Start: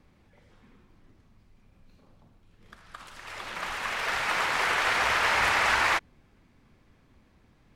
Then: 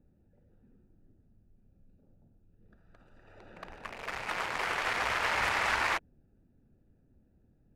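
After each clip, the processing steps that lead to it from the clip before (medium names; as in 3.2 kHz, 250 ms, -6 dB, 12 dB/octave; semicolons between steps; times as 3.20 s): local Wiener filter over 41 samples; trim -4 dB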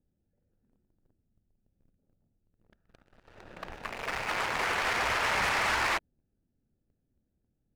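waveshaping leveller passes 3; trim -6 dB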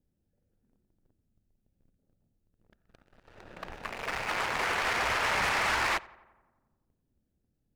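filtered feedback delay 88 ms, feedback 66%, low-pass 2.5 kHz, level -21.5 dB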